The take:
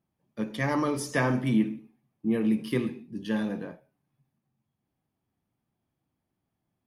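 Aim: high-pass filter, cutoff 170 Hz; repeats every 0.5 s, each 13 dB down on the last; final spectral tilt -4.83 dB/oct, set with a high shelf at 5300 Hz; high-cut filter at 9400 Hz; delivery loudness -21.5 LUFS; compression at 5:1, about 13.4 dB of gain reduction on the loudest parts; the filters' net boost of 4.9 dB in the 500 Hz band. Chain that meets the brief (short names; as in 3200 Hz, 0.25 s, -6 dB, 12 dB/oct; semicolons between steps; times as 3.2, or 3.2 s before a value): HPF 170 Hz; LPF 9400 Hz; bell 500 Hz +6 dB; high shelf 5300 Hz +7.5 dB; compressor 5:1, threshold -35 dBFS; feedback echo 0.5 s, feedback 22%, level -13 dB; gain +18 dB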